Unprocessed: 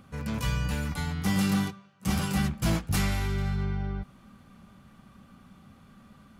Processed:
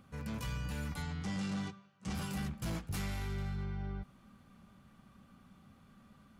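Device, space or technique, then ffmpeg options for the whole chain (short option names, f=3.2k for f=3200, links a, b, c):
soft clipper into limiter: -filter_complex "[0:a]asoftclip=type=tanh:threshold=-20.5dB,alimiter=level_in=0.5dB:limit=-24dB:level=0:latency=1:release=51,volume=-0.5dB,asettb=1/sr,asplit=3[a][b][c];[a]atrim=end=1.024[d];[b]atrim=start=1.02:end=2.15,asetpts=PTS-STARTPTS,afade=t=in:d=0.004:c=qsin,afade=t=out:st=1.126:d=0.004:c=qsin,lowpass=f=8.1k:w=0.5412,lowpass=f=8.1k:w=1.3066[e];[c]atrim=start=2.146[f];[d][e]acrossfade=d=0.004:c1=hsin:c2=qsin[g];[g][f]acrossfade=d=0.004:c1=qsin:c2=hsin,volume=-7dB"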